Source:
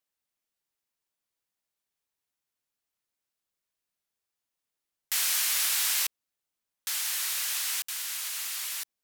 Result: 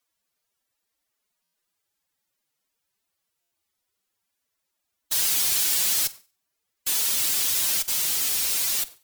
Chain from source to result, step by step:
power curve on the samples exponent 0.5
noise gate with hold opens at −42 dBFS
phase-vocoder stretch with locked phases 2×
in parallel at −9 dB: fuzz pedal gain 40 dB, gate −48 dBFS
on the sum: feedback echo with a high-pass in the loop 95 ms, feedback 42%, high-pass 210 Hz, level −18.5 dB
wrong playback speed 7.5 ips tape played at 15 ips
buffer that repeats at 0:01.43/0:03.41, samples 512, times 8
level −3.5 dB

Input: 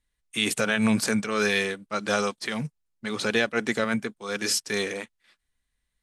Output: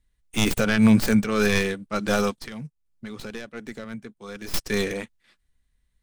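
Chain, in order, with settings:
stylus tracing distortion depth 0.15 ms
low-shelf EQ 280 Hz +10.5 dB
0:02.33–0:04.54: downward compressor 3 to 1, threshold −38 dBFS, peak gain reduction 16 dB

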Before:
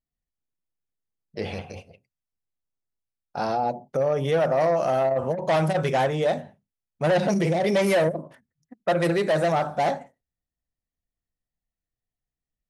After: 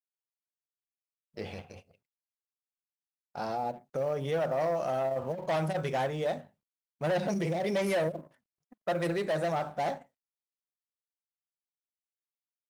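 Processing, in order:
mu-law and A-law mismatch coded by A
level −7.5 dB

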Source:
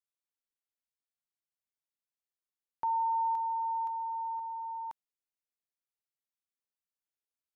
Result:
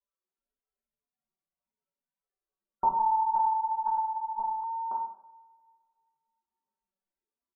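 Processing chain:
spectral peaks only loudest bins 64
Bessel low-pass filter 790 Hz, order 2
comb filter 5.2 ms, depth 95%
coupled-rooms reverb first 0.7 s, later 2.2 s, from −23 dB, DRR −5.5 dB
0:02.99–0:04.64: one-pitch LPC vocoder at 8 kHz 220 Hz
level +8.5 dB

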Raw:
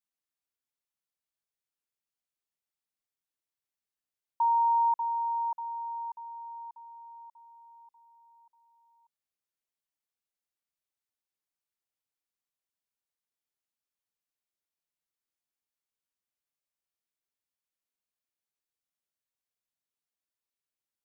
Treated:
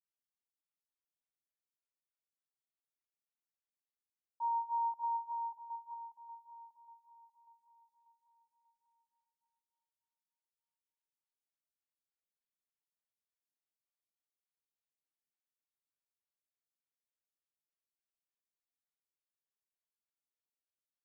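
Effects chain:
repeating echo 382 ms, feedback 54%, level −11.5 dB
0:05.03–0:05.94: dynamic equaliser 910 Hz, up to +4 dB, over −40 dBFS
phaser with staggered stages 3.4 Hz
level −8.5 dB

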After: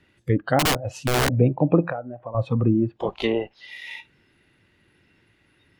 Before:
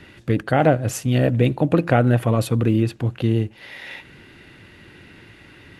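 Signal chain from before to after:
0:03.00–0:03.60: ceiling on every frequency bin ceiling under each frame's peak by 20 dB
treble cut that deepens with the level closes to 1,200 Hz, closed at −14 dBFS
0:01.85–0:02.35: downward compressor 8 to 1, threshold −23 dBFS, peak gain reduction 11.5 dB
noise reduction from a noise print of the clip's start 16 dB
0:00.59–0:01.32: wrap-around overflow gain 15.5 dB

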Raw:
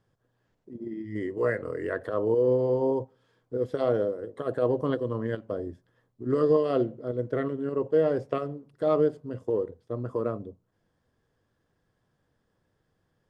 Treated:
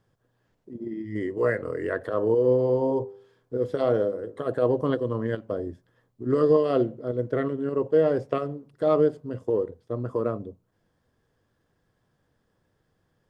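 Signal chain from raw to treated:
0:02.05–0:04.49: hum removal 99.28 Hz, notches 17
level +2.5 dB

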